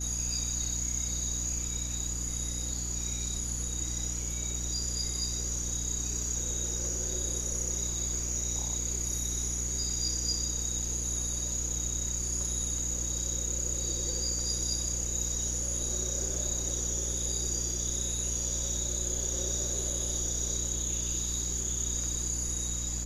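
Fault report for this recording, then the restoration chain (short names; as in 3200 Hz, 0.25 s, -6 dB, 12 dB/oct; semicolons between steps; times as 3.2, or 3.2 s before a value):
hum 60 Hz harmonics 5 -37 dBFS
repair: de-hum 60 Hz, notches 5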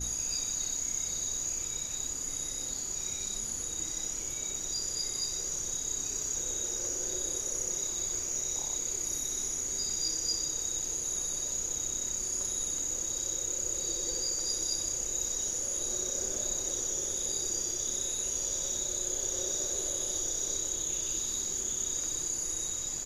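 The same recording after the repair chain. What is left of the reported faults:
none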